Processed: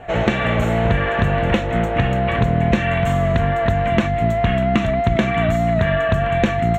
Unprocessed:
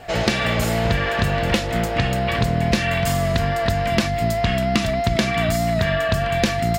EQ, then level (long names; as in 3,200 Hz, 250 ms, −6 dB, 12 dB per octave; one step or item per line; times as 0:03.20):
moving average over 9 samples
+3.0 dB